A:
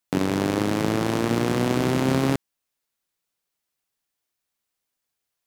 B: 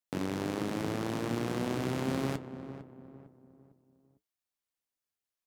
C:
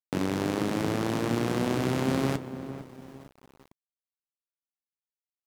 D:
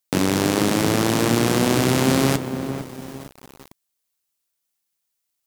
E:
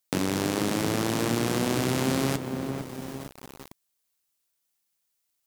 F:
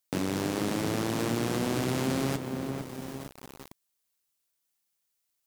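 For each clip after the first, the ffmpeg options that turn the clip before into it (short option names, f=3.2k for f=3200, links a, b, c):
-filter_complex "[0:a]flanger=delay=6.5:depth=8.9:regen=-62:speed=0.8:shape=triangular,asplit=2[a][b];[b]adelay=453,lowpass=f=1.2k:p=1,volume=-11dB,asplit=2[c][d];[d]adelay=453,lowpass=f=1.2k:p=1,volume=0.41,asplit=2[e][f];[f]adelay=453,lowpass=f=1.2k:p=1,volume=0.41,asplit=2[g][h];[h]adelay=453,lowpass=f=1.2k:p=1,volume=0.41[i];[c][e][g][i]amix=inputs=4:normalize=0[j];[a][j]amix=inputs=2:normalize=0,volume=-6.5dB"
-af "aeval=exprs='val(0)*gte(abs(val(0)),0.00211)':c=same,volume=5.5dB"
-filter_complex "[0:a]highshelf=f=3.9k:g=10,asplit=2[a][b];[b]alimiter=limit=-16.5dB:level=0:latency=1,volume=2dB[c];[a][c]amix=inputs=2:normalize=0,volume=3.5dB"
-af "acompressor=threshold=-35dB:ratio=1.5"
-af "asoftclip=type=tanh:threshold=-15dB,volume=-2dB"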